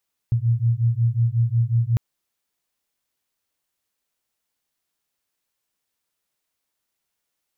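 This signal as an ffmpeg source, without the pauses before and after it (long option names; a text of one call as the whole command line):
ffmpeg -f lavfi -i "aevalsrc='0.1*(sin(2*PI*114*t)+sin(2*PI*119.5*t))':duration=1.65:sample_rate=44100" out.wav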